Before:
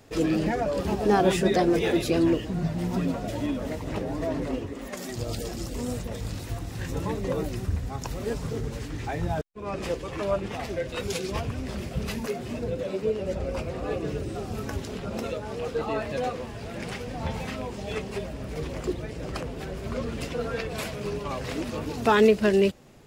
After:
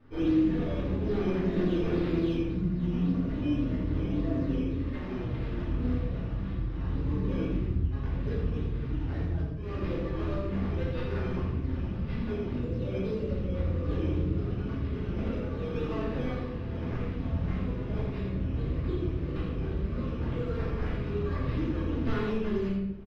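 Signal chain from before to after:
stylus tracing distortion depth 0.33 ms
guitar amp tone stack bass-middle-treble 6-0-2
downward compressor, threshold −46 dBFS, peak gain reduction 11 dB
hollow resonant body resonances 330/480/1,100 Hz, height 9 dB, ringing for 25 ms
sample-and-hold swept by an LFO 11×, swing 100% 1.8 Hz
high-frequency loss of the air 290 metres
on a send: single-tap delay 83 ms −5.5 dB
on the sum: rectangular room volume 180 cubic metres, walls mixed, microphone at 2.6 metres
level +6 dB

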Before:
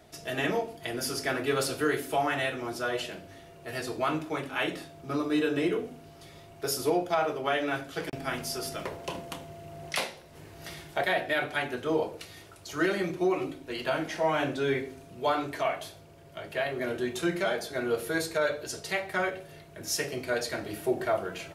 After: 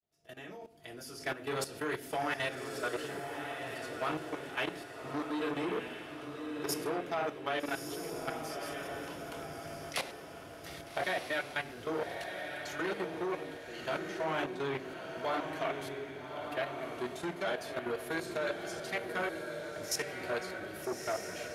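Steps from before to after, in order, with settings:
fade in at the beginning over 1.30 s
output level in coarse steps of 15 dB
feedback delay with all-pass diffusion 1,230 ms, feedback 43%, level −6 dB
saturating transformer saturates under 1,300 Hz
level −1.5 dB

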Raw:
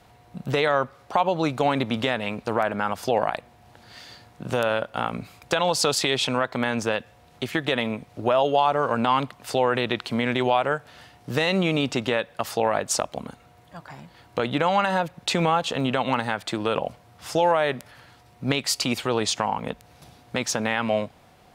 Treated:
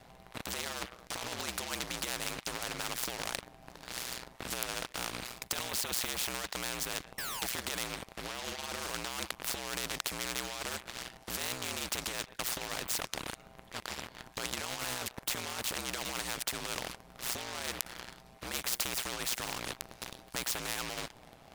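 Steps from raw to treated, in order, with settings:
compressor whose output falls as the input rises −24 dBFS, ratio −0.5
sound drawn into the spectrogram fall, 0:07.18–0:07.47, 730–1,800 Hz −21 dBFS
ring modulation 61 Hz
leveller curve on the samples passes 3
every bin compressed towards the loudest bin 4 to 1

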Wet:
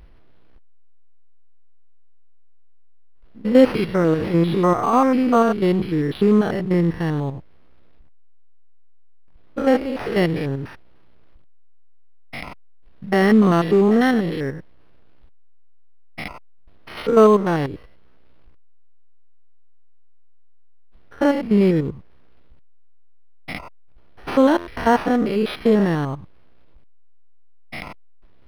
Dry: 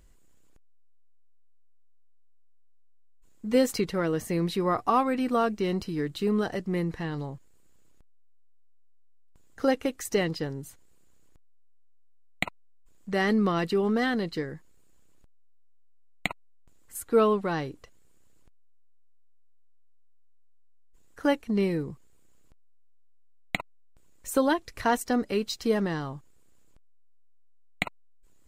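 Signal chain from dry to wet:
spectrum averaged block by block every 100 ms
parametric band 67 Hz +7 dB 0.5 octaves
in parallel at −6 dB: floating-point word with a short mantissa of 2 bits
on the sum: buffer that repeats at 0:24.57, samples 512, times 8
linearly interpolated sample-rate reduction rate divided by 6×
level +7.5 dB

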